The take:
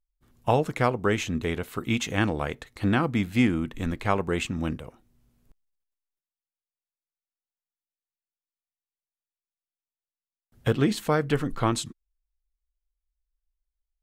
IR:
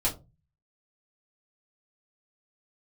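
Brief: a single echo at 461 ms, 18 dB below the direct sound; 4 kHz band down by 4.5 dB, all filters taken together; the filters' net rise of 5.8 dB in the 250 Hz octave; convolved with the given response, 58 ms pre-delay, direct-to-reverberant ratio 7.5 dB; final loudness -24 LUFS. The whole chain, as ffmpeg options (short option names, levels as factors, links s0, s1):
-filter_complex "[0:a]equalizer=f=250:t=o:g=7,equalizer=f=4000:t=o:g=-6,aecho=1:1:461:0.126,asplit=2[s0][s1];[1:a]atrim=start_sample=2205,adelay=58[s2];[s1][s2]afir=irnorm=-1:irlink=0,volume=0.168[s3];[s0][s3]amix=inputs=2:normalize=0,volume=0.841"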